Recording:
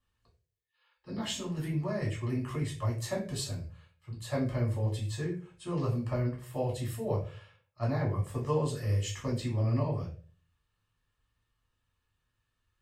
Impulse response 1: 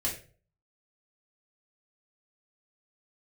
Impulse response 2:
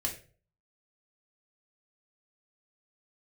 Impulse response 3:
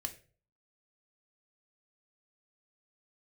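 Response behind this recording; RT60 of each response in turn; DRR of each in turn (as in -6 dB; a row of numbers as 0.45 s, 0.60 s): 1; 0.40 s, 0.40 s, 0.40 s; -4.5 dB, -0.5 dB, 5.5 dB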